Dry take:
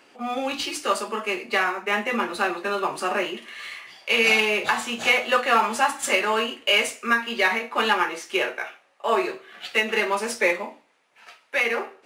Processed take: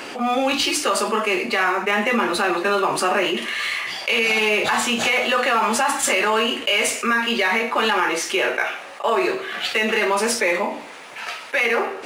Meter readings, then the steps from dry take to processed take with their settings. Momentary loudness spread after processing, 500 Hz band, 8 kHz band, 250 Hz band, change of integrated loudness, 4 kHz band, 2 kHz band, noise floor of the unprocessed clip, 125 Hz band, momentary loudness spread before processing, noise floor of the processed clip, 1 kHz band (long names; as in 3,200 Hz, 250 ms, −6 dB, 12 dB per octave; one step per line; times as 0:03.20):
6 LU, +4.0 dB, +8.0 dB, +6.5 dB, +3.0 dB, +4.0 dB, +3.0 dB, −61 dBFS, can't be measured, 11 LU, −37 dBFS, +3.5 dB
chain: brickwall limiter −16 dBFS, peak gain reduction 9.5 dB
envelope flattener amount 50%
level +5 dB